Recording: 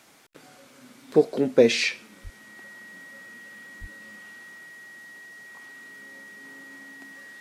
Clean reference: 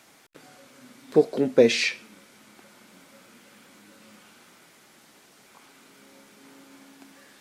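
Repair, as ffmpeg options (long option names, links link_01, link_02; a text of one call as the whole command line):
ffmpeg -i in.wav -filter_complex "[0:a]bandreject=frequency=1900:width=30,asplit=3[link_01][link_02][link_03];[link_01]afade=type=out:start_time=2.23:duration=0.02[link_04];[link_02]highpass=frequency=140:width=0.5412,highpass=frequency=140:width=1.3066,afade=type=in:start_time=2.23:duration=0.02,afade=type=out:start_time=2.35:duration=0.02[link_05];[link_03]afade=type=in:start_time=2.35:duration=0.02[link_06];[link_04][link_05][link_06]amix=inputs=3:normalize=0,asplit=3[link_07][link_08][link_09];[link_07]afade=type=out:start_time=3.8:duration=0.02[link_10];[link_08]highpass=frequency=140:width=0.5412,highpass=frequency=140:width=1.3066,afade=type=in:start_time=3.8:duration=0.02,afade=type=out:start_time=3.92:duration=0.02[link_11];[link_09]afade=type=in:start_time=3.92:duration=0.02[link_12];[link_10][link_11][link_12]amix=inputs=3:normalize=0" out.wav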